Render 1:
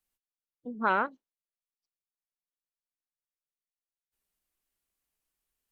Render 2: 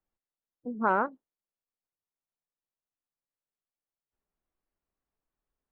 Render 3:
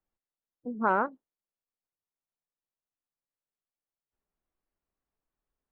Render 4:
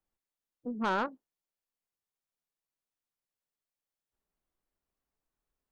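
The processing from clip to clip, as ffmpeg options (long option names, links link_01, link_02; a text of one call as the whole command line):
ffmpeg -i in.wav -af "lowpass=1200,volume=3dB" out.wav
ffmpeg -i in.wav -af anull out.wav
ffmpeg -i in.wav -af "asoftclip=type=tanh:threshold=-24.5dB" out.wav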